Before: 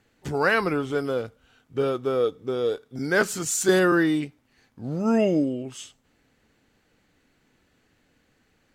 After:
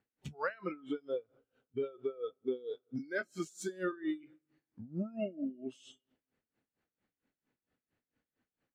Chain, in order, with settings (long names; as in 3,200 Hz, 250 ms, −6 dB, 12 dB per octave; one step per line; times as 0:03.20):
downward compressor 12 to 1, threshold −31 dBFS, peak gain reduction 17 dB
low-shelf EQ 63 Hz −11 dB
convolution reverb RT60 1.2 s, pre-delay 90 ms, DRR 14 dB
noise reduction from a noise print of the clip's start 18 dB
low-pass filter 2,100 Hz 6 dB per octave
tremolo with a sine in dB 4.4 Hz, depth 21 dB
level +4 dB